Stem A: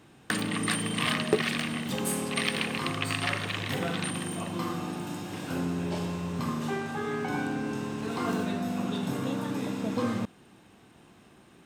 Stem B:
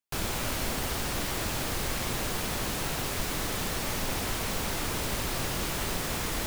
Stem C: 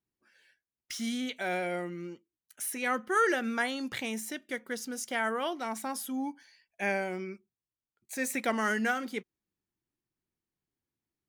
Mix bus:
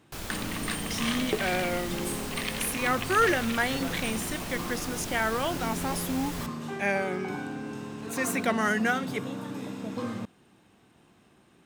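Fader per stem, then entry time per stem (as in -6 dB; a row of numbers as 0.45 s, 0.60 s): -4.5 dB, -6.5 dB, +3.0 dB; 0.00 s, 0.00 s, 0.00 s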